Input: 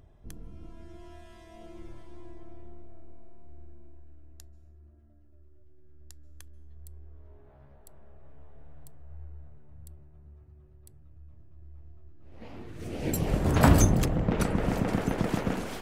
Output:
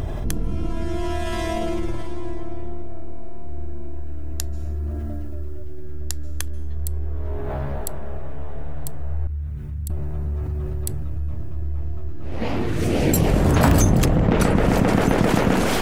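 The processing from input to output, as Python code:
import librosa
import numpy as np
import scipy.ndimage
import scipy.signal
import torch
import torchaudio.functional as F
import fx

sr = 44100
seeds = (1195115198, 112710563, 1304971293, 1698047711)

p1 = fx.tone_stack(x, sr, knobs='6-0-2', at=(9.27, 9.9))
p2 = (np.mod(10.0 ** (8.5 / 20.0) * p1 + 1.0, 2.0) - 1.0) / 10.0 ** (8.5 / 20.0)
p3 = p1 + (p2 * 10.0 ** (-10.5 / 20.0))
y = fx.env_flatten(p3, sr, amount_pct=70)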